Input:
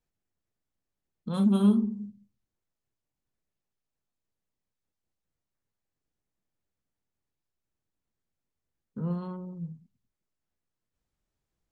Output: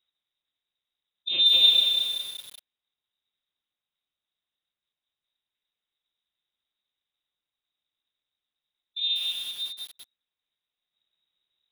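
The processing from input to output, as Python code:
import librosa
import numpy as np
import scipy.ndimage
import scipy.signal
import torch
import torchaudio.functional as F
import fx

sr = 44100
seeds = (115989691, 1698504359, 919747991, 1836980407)

y = fx.cheby_harmonics(x, sr, harmonics=(3, 8), levels_db=(-44, -32), full_scale_db=-12.0)
y = fx.freq_invert(y, sr, carrier_hz=3800)
y = fx.echo_crushed(y, sr, ms=190, feedback_pct=55, bits=7, wet_db=-3.5)
y = F.gain(torch.from_numpy(y), 3.0).numpy()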